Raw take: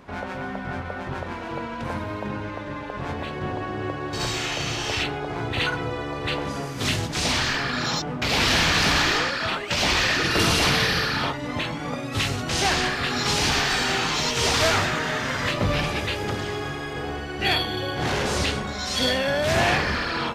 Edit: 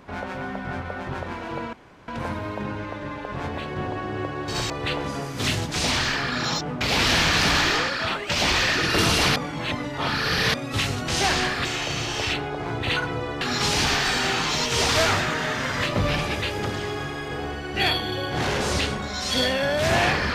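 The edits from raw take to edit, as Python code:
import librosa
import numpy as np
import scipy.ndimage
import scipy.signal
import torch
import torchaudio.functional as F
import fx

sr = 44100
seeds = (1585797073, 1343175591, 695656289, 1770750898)

y = fx.edit(x, sr, fx.insert_room_tone(at_s=1.73, length_s=0.35),
    fx.move(start_s=4.35, length_s=1.76, to_s=13.06),
    fx.reverse_span(start_s=10.77, length_s=1.18), tone=tone)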